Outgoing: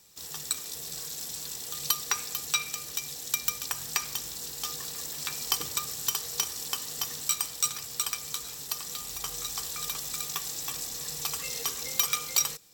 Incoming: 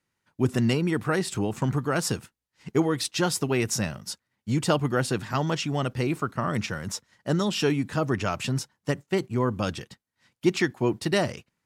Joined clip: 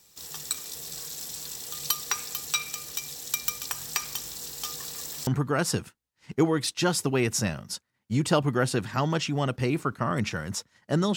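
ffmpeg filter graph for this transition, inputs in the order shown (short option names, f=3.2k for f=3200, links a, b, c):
-filter_complex "[0:a]apad=whole_dur=11.16,atrim=end=11.16,atrim=end=5.272[a];[1:a]atrim=start=1.638:end=7.53[b];[a][b]acrossfade=d=0.004:c1=hsin:c2=hsin"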